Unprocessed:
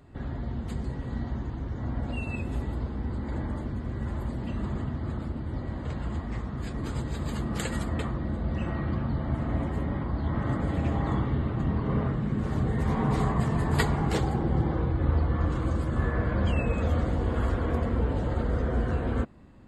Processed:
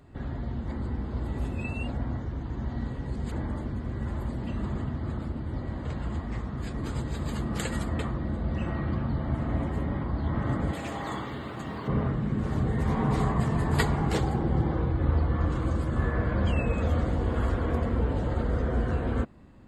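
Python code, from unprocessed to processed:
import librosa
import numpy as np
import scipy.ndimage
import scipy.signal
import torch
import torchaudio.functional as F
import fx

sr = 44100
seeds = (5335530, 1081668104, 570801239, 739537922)

y = fx.riaa(x, sr, side='recording', at=(10.73, 11.88))
y = fx.edit(y, sr, fx.reverse_span(start_s=0.68, length_s=2.64), tone=tone)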